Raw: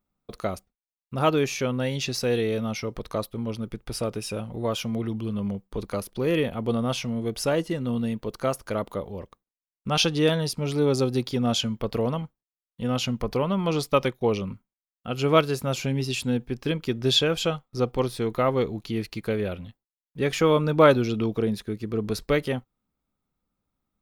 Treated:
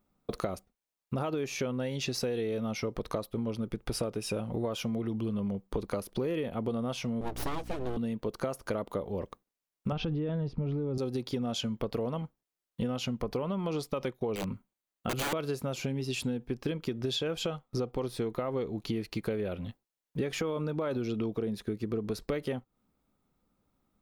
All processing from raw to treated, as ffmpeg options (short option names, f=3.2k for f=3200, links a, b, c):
-filter_complex "[0:a]asettb=1/sr,asplit=3[a][b][c];[a]atrim=end=7.214[d];[b]atrim=start=7.21:end=7.97,asetpts=PTS-STARTPTS,afade=t=in:d=0.004:c=qsin,afade=t=out:st=0.756:d=0.004:c=qsin,aeval=exprs='abs(val(0))':c=same,aeval=exprs='val(0)+0.01*(sin(2*PI*60*n/s)+sin(2*PI*2*60*n/s)/2+sin(2*PI*3*60*n/s)/3+sin(2*PI*4*60*n/s)/4+sin(2*PI*5*60*n/s)/5)':c=same[e];[c]atrim=start=7.966[f];[d][e]acrossfade=d=0.004:c1=hsin:c2=qsin[g];[g][f]acrossfade=d=0.004:c1=qsin:c2=hsin,asettb=1/sr,asplit=3[h][i][j];[h]atrim=end=9.924[k];[i]atrim=start=9.92:end=10.98,asetpts=PTS-STARTPTS,afade=t=in:d=0.004:c=qsin,afade=t=out:st=1.056:d=0.004:c=qsin,lowpass=3.5k,aemphasis=mode=reproduction:type=riaa[l];[j]atrim=start=10.976[m];[k][l]acrossfade=d=0.004:c1=hsin:c2=qsin[n];[n][m]acrossfade=d=0.004:c1=qsin:c2=hsin,asettb=1/sr,asplit=3[o][p][q];[o]atrim=end=14.354[r];[p]atrim=start=14.35:end=15.33,asetpts=PTS-STARTPTS,afade=t=in:d=0.004:c=qsin,afade=t=out:st=0.976:d=0.004:c=qsin,aeval=exprs='(mod(15*val(0)+1,2)-1)/15':c=same,bandreject=f=5.3k:w=9.8[s];[q]atrim=start=15.326[t];[r][s]acrossfade=d=0.004:c1=hsin:c2=qsin[u];[u][t]acrossfade=d=0.004:c1=qsin:c2=hsin,equalizer=f=410:t=o:w=2.8:g=5,alimiter=limit=-13dB:level=0:latency=1:release=50,acompressor=threshold=-33dB:ratio=10,volume=3.5dB"